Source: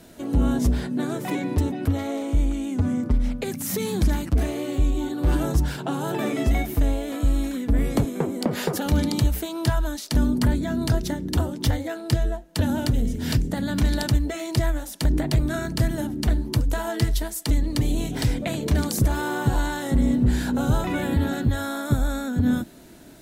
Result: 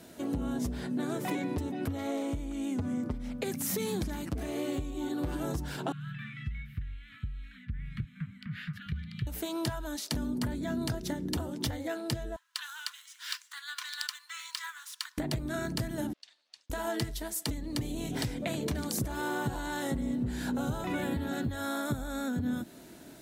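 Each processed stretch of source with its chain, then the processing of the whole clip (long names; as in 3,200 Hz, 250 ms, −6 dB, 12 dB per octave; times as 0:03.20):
0:05.92–0:09.27: inverse Chebyshev band-stop filter 310–850 Hz, stop band 50 dB + high-frequency loss of the air 490 metres
0:12.36–0:15.18: running median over 3 samples + Chebyshev high-pass with heavy ripple 1,000 Hz, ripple 3 dB
0:16.13–0:16.70: lower of the sound and its delayed copy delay 1.1 ms + four-pole ladder band-pass 5,000 Hz, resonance 25% + high-frequency loss of the air 77 metres
whole clip: downward compressor 4 to 1, threshold −26 dBFS; high-pass filter 110 Hz 6 dB per octave; level −2.5 dB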